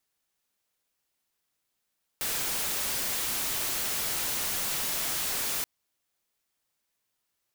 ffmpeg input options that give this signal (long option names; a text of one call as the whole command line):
ffmpeg -f lavfi -i "anoisesrc=color=white:amplitude=0.0517:duration=3.43:sample_rate=44100:seed=1" out.wav